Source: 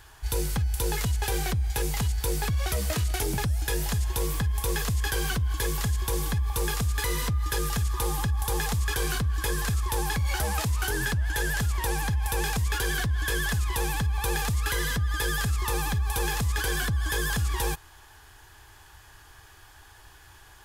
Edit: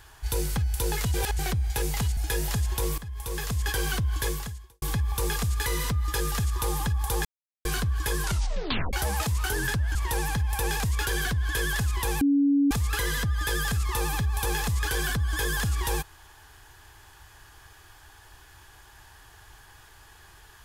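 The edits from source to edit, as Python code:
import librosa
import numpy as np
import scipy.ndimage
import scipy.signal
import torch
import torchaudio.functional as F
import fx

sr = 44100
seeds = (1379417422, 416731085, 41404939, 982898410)

y = fx.edit(x, sr, fx.reverse_span(start_s=1.14, length_s=0.25),
    fx.cut(start_s=2.17, length_s=1.38),
    fx.fade_in_from(start_s=4.36, length_s=0.72, floor_db=-15.0),
    fx.fade_out_span(start_s=5.65, length_s=0.55, curve='qua'),
    fx.silence(start_s=8.63, length_s=0.4),
    fx.tape_stop(start_s=9.6, length_s=0.71),
    fx.cut(start_s=11.33, length_s=0.35),
    fx.bleep(start_s=13.94, length_s=0.5, hz=282.0, db=-18.0), tone=tone)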